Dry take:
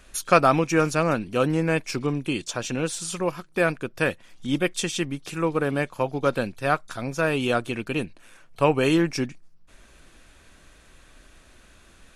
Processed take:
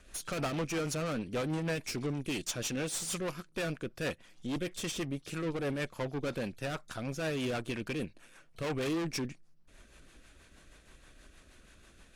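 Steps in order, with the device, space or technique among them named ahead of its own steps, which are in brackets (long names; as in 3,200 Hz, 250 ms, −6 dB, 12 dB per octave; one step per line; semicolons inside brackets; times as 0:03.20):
0:01.75–0:03.45: high-shelf EQ 4,100 Hz +5.5 dB
overdriven rotary cabinet (tube saturation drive 29 dB, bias 0.6; rotating-speaker cabinet horn 6.3 Hz)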